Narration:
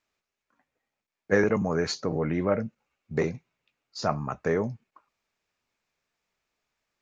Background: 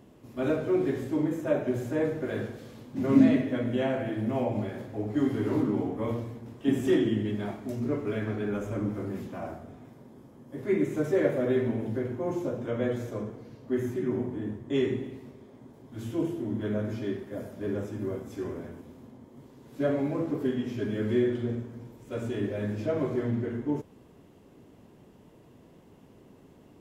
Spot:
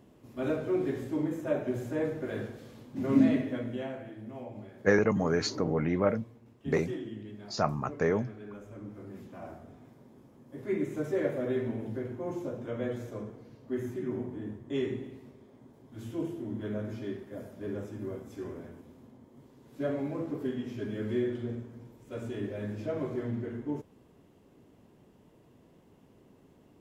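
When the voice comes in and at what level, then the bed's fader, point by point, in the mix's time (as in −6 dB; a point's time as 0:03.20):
3.55 s, −1.5 dB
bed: 0:03.47 −3.5 dB
0:04.16 −14 dB
0:08.79 −14 dB
0:09.63 −5 dB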